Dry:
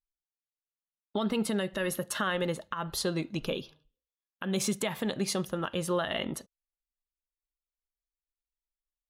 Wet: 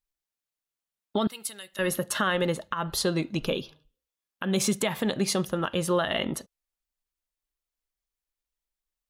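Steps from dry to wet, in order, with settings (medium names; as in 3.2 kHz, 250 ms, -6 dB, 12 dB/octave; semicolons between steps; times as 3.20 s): 1.27–1.79 s: pre-emphasis filter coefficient 0.97; trim +4.5 dB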